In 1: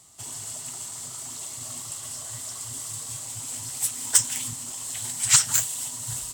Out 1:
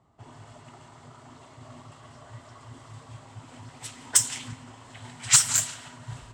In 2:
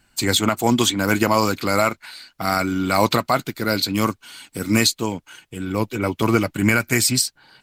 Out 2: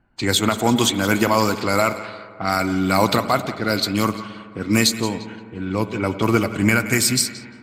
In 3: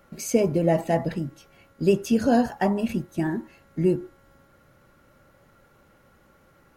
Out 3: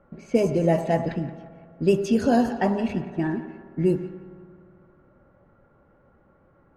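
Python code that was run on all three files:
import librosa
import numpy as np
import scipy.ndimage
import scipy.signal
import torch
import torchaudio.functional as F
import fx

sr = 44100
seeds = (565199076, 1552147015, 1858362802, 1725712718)

y = fx.echo_split(x, sr, split_hz=880.0, low_ms=101, high_ms=174, feedback_pct=52, wet_db=-15)
y = fx.rev_spring(y, sr, rt60_s=2.5, pass_ms=(53,), chirp_ms=70, drr_db=13.5)
y = fx.env_lowpass(y, sr, base_hz=1100.0, full_db=-15.5)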